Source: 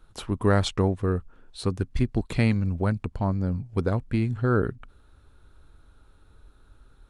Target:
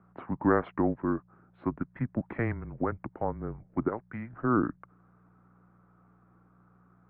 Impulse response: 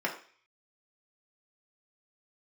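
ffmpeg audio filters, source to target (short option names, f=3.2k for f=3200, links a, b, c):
-filter_complex "[0:a]asettb=1/sr,asplit=3[a][b][c];[a]atrim=end=3.884[d];[b]atrim=start=3.88:end=4.33,asetpts=PTS-STARTPTS,afade=t=in:d=0.004:c=qsin,afade=t=out:st=0.446:d=0.004:c=qsin,lowshelf=f=410:g=-11[e];[c]atrim=start=4.326[f];[d][e]acrossfade=d=0.004:c1=hsin:c2=qsin[g];[g][f]acrossfade=d=0.004:c1=qsin:c2=hsin,aeval=exprs='val(0)+0.00501*(sin(2*PI*60*n/s)+sin(2*PI*2*60*n/s)/2+sin(2*PI*3*60*n/s)/3+sin(2*PI*4*60*n/s)/4+sin(2*PI*5*60*n/s)/5)':c=same,highpass=f=280:t=q:w=0.5412,highpass=f=280:t=q:w=1.307,lowpass=f=2k:t=q:w=0.5176,lowpass=f=2k:t=q:w=0.7071,lowpass=f=2k:t=q:w=1.932,afreqshift=-120"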